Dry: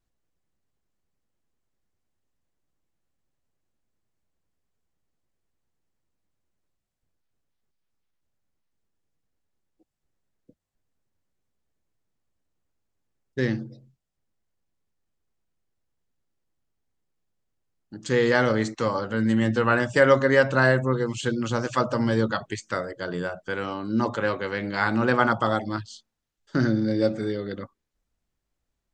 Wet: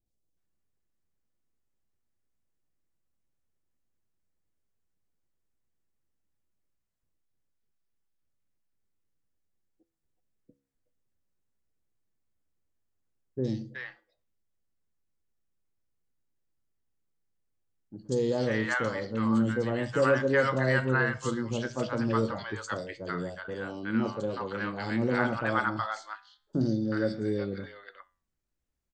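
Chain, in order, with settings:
flanger 0.22 Hz, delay 9.3 ms, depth 7.8 ms, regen +82%
three-band delay without the direct sound lows, highs, mids 60/370 ms, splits 790/3,500 Hz

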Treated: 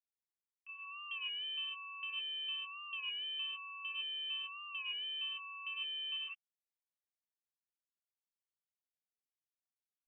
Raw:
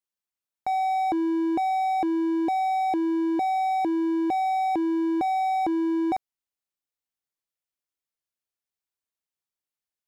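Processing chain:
high-pass filter 230 Hz 24 dB per octave
noise gate −21 dBFS, range −43 dB
brickwall limiter −55.5 dBFS, peak gain reduction 11 dB
reverb whose tail is shaped and stops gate 190 ms rising, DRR −6 dB
voice inversion scrambler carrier 3,400 Hz
wow of a warped record 33 1/3 rpm, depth 100 cents
level +13 dB

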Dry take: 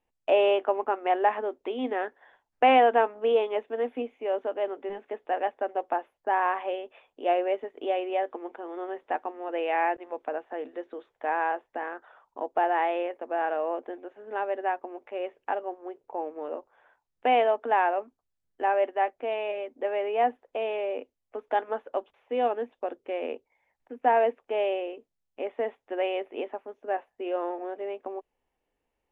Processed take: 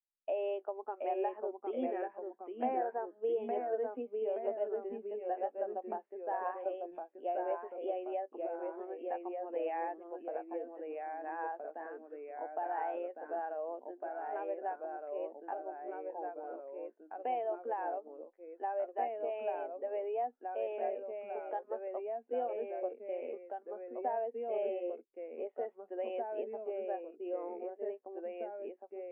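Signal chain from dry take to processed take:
0:02.65–0:03.16: low-pass filter 2,200 Hz 24 dB per octave
0:10.74–0:11.39: parametric band 330 Hz −6.5 dB 2.7 octaves
downward compressor 6 to 1, threshold −26 dBFS, peak gain reduction 10.5 dB
delay with pitch and tempo change per echo 708 ms, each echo −1 semitone, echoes 2
every bin expanded away from the loudest bin 1.5 to 1
level −8.5 dB

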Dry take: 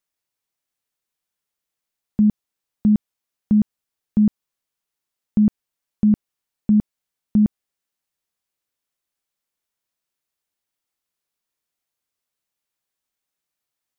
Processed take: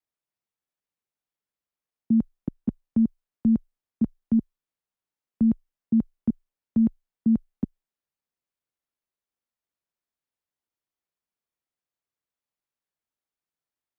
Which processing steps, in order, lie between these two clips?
reversed piece by piece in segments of 191 ms
frequency shifter +14 Hz
one half of a high-frequency compander decoder only
level −4.5 dB

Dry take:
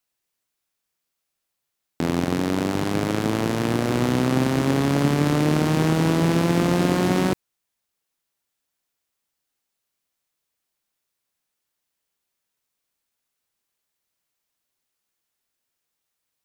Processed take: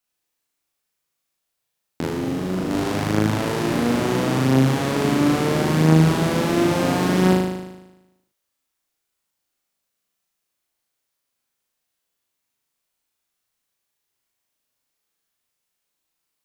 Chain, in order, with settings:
0:02.07–0:02.71: tube saturation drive 17 dB, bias 0.3
on a send: flutter between parallel walls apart 6.5 metres, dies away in 1 s
on the sum: level −2 dB

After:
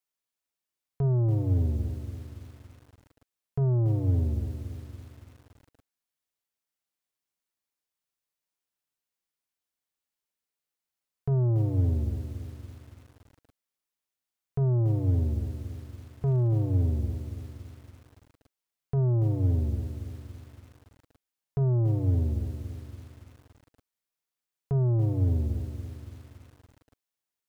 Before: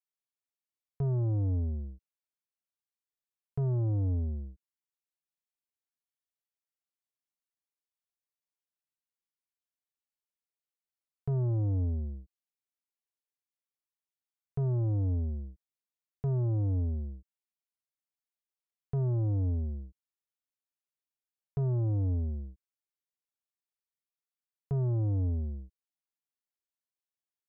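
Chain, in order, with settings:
mains-hum notches 50/100/150/200 Hz
feedback echo at a low word length 283 ms, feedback 55%, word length 9 bits, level −9.5 dB
level +5 dB

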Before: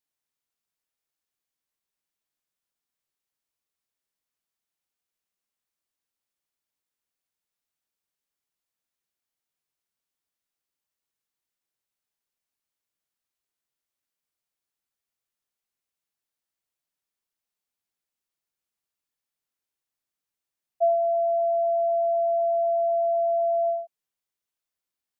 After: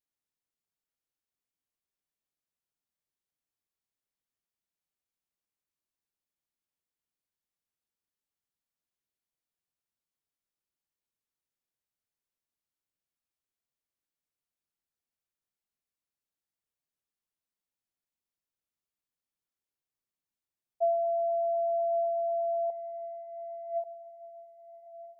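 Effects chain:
low-shelf EQ 500 Hz +7 dB
0:22.70–0:23.84: compressor whose output falls as the input rises −26 dBFS, ratio −0.5
feedback delay with all-pass diffusion 1,243 ms, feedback 62%, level −14 dB
level −8 dB

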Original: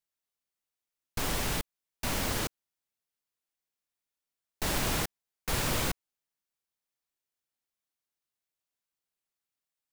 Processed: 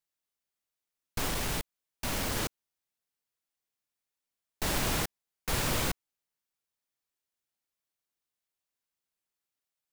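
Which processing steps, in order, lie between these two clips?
0:01.28–0:02.37: hard clipping −27.5 dBFS, distortion −18 dB

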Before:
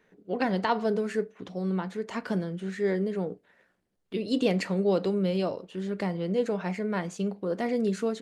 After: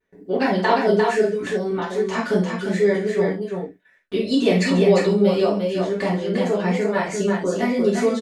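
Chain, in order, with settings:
reverb reduction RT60 0.88 s
noise gate with hold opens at −53 dBFS
in parallel at −1 dB: downward compressor, threshold −35 dBFS, peak gain reduction 14 dB
on the sum: pitch vibrato 0.82 Hz 36 cents
on a send: multi-tap delay 49/136/350 ms −11/−17/−4 dB
on the sum: reverb whose tail is shaped and stops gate 110 ms falling, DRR −5.5 dB

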